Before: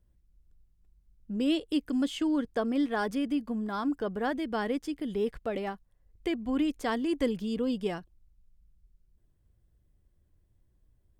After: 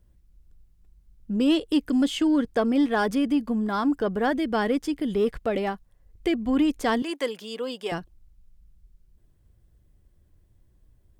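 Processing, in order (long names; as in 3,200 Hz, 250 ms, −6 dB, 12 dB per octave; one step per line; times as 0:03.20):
0:07.02–0:07.92: high-pass filter 590 Hz 12 dB per octave
in parallel at −3.5 dB: soft clipping −25.5 dBFS, distortion −15 dB
on the sum: level +3 dB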